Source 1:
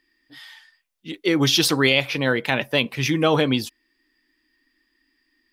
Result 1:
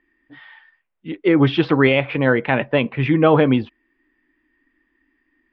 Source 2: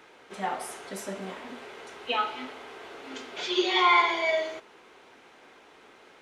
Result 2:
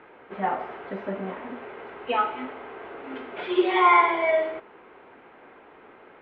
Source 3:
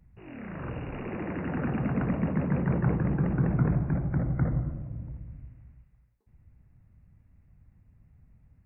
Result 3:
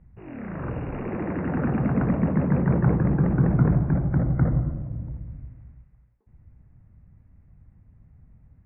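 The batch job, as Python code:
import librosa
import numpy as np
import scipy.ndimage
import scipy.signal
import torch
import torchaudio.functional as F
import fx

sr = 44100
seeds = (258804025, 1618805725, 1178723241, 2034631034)

y = scipy.signal.sosfilt(scipy.signal.bessel(6, 1700.0, 'lowpass', norm='mag', fs=sr, output='sos'), x)
y = F.gain(torch.from_numpy(y), 5.5).numpy()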